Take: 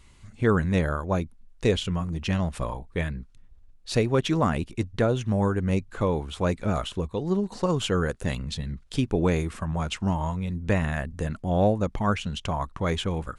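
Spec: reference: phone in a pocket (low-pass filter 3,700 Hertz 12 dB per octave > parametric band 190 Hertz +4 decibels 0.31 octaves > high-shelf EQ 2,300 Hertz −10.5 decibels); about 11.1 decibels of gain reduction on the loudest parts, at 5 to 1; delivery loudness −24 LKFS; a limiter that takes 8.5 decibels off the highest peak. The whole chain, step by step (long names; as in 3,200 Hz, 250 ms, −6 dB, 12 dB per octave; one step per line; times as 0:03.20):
downward compressor 5 to 1, threshold −30 dBFS
brickwall limiter −25.5 dBFS
low-pass filter 3,700 Hz 12 dB per octave
parametric band 190 Hz +4 dB 0.31 octaves
high-shelf EQ 2,300 Hz −10.5 dB
level +12 dB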